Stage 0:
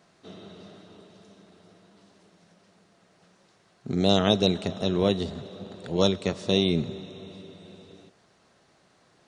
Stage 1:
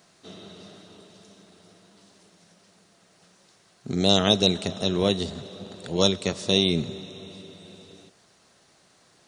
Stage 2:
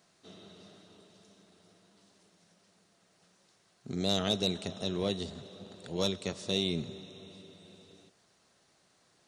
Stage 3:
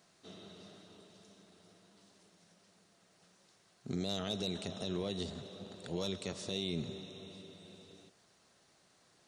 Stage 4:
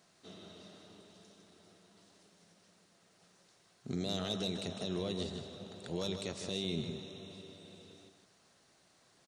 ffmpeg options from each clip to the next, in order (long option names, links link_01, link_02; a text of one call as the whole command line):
ffmpeg -i in.wav -af "highshelf=frequency=4000:gain=11.5" out.wav
ffmpeg -i in.wav -af "asoftclip=type=tanh:threshold=-9.5dB,volume=-8.5dB" out.wav
ffmpeg -i in.wav -af "alimiter=level_in=3.5dB:limit=-24dB:level=0:latency=1:release=65,volume=-3.5dB" out.wav
ffmpeg -i in.wav -af "aecho=1:1:155:0.398" out.wav